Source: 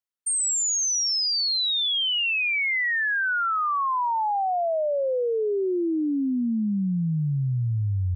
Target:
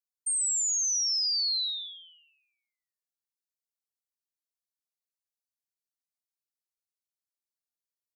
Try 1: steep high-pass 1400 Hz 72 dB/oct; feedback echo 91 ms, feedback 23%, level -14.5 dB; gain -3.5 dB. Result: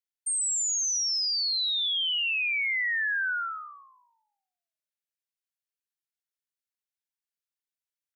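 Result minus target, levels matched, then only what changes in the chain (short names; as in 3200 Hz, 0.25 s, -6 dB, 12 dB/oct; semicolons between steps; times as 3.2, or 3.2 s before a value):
4000 Hz band +3.0 dB
change: steep high-pass 3900 Hz 72 dB/oct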